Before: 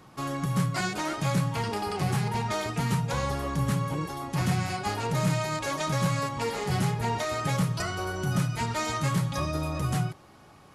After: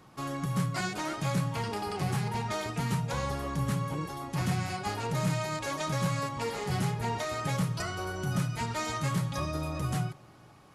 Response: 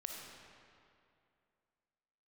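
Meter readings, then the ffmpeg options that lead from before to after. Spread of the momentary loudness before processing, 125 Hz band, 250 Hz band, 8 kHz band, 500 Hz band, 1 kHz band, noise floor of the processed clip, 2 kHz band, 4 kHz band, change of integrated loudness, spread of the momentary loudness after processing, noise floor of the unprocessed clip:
4 LU, -3.5 dB, -3.5 dB, -3.5 dB, -3.5 dB, -3.5 dB, -55 dBFS, -3.5 dB, -3.5 dB, -3.5 dB, 4 LU, -53 dBFS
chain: -filter_complex "[0:a]asplit=2[a][b];[1:a]atrim=start_sample=2205[c];[b][c]afir=irnorm=-1:irlink=0,volume=-18.5dB[d];[a][d]amix=inputs=2:normalize=0,volume=-4dB"

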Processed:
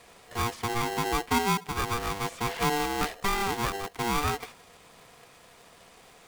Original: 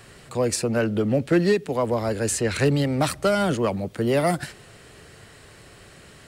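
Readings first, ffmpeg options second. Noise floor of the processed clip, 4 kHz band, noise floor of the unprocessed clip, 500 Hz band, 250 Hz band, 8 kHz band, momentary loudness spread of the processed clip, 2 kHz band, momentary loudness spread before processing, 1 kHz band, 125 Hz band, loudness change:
-55 dBFS, 0.0 dB, -48 dBFS, -12.0 dB, -10.5 dB, -5.5 dB, 6 LU, -1.5 dB, 6 LU, +2.0 dB, -10.0 dB, -6.0 dB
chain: -filter_complex "[0:a]acrossover=split=3300[a][b];[b]acompressor=threshold=-45dB:ratio=4:attack=1:release=60[c];[a][c]amix=inputs=2:normalize=0,aeval=exprs='val(0)*sgn(sin(2*PI*590*n/s))':c=same,volume=-6.5dB"

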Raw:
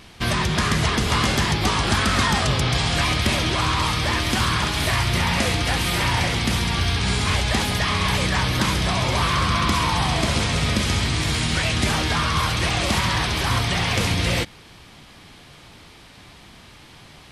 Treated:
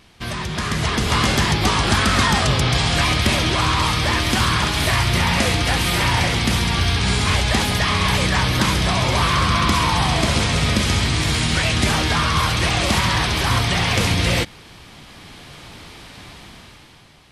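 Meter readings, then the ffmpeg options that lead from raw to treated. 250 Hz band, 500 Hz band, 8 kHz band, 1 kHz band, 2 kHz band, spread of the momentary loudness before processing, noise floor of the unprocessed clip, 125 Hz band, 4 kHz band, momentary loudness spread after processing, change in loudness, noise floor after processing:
+2.5 dB, +2.5 dB, +2.5 dB, +2.5 dB, +2.5 dB, 2 LU, -46 dBFS, +2.5 dB, +2.5 dB, 2 LU, +2.5 dB, -44 dBFS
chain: -af "dynaudnorm=f=130:g=13:m=12dB,volume=-5.5dB"

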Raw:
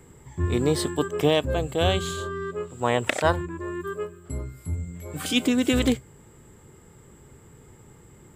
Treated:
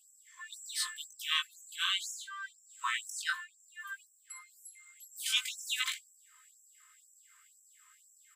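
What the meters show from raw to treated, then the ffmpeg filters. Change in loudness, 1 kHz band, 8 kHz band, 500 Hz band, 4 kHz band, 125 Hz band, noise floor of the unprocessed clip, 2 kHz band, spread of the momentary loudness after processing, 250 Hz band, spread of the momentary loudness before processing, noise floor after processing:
-9.5 dB, -13.0 dB, -2.5 dB, under -40 dB, -2.5 dB, under -40 dB, -52 dBFS, -5.0 dB, 18 LU, under -40 dB, 12 LU, -66 dBFS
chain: -af "flanger=delay=16.5:depth=3.1:speed=0.47,aecho=1:1:3.9:0.48,afftfilt=real='re*gte(b*sr/1024,950*pow(5400/950,0.5+0.5*sin(2*PI*2*pts/sr)))':imag='im*gte(b*sr/1024,950*pow(5400/950,0.5+0.5*sin(2*PI*2*pts/sr)))':win_size=1024:overlap=0.75"

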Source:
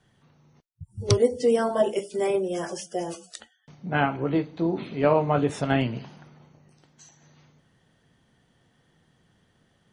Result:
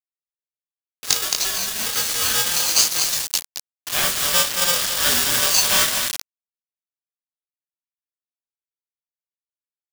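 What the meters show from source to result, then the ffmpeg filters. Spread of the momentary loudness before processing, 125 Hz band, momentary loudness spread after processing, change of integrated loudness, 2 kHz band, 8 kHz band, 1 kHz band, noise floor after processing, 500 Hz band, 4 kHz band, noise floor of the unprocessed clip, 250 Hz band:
16 LU, -11.0 dB, 9 LU, +7.5 dB, +9.5 dB, +23.0 dB, +0.5 dB, under -85 dBFS, -10.0 dB, +20.0 dB, -66 dBFS, -12.0 dB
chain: -filter_complex "[0:a]flanger=delay=18.5:depth=5.6:speed=0.68,highpass=290,equalizer=f=310:t=q:w=4:g=3,equalizer=f=570:t=q:w=4:g=-6,equalizer=f=980:t=q:w=4:g=-8,equalizer=f=1.6k:t=q:w=4:g=-4,equalizer=f=3k:t=q:w=4:g=-8,equalizer=f=5.3k:t=q:w=4:g=9,lowpass=f=6.6k:w=0.5412,lowpass=f=6.6k:w=1.3066,aecho=1:1:221:0.335,acrossover=split=480|880[a][b][c];[a]acrusher=samples=21:mix=1:aa=0.000001[d];[d][b][c]amix=inputs=3:normalize=0,asoftclip=type=hard:threshold=-23.5dB,bandreject=f=60:t=h:w=6,bandreject=f=120:t=h:w=6,bandreject=f=180:t=h:w=6,bandreject=f=240:t=h:w=6,bandreject=f=300:t=h:w=6,bandreject=f=360:t=h:w=6,bandreject=f=420:t=h:w=6,asplit=2[e][f];[f]adelay=35,volume=-12dB[g];[e][g]amix=inputs=2:normalize=0,acrusher=bits=6:mix=0:aa=0.000001,equalizer=f=510:t=o:w=0.87:g=-9,aexciter=amount=6.4:drive=6.8:freq=2k,dynaudnorm=f=110:g=11:m=11.5dB,aeval=exprs='val(0)*sgn(sin(2*PI*870*n/s))':c=same,volume=-1.5dB"

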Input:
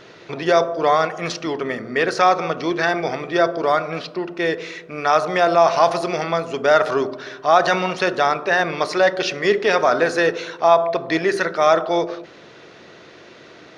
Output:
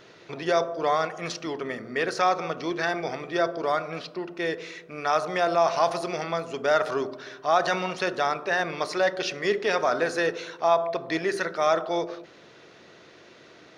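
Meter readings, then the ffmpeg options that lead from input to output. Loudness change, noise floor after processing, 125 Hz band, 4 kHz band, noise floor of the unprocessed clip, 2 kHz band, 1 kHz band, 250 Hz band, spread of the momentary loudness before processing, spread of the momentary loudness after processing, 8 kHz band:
-7.5 dB, -52 dBFS, -7.5 dB, -6.5 dB, -44 dBFS, -7.0 dB, -7.5 dB, -7.5 dB, 10 LU, 10 LU, -5.0 dB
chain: -af "highshelf=f=8.3k:g=7.5,volume=-7.5dB"

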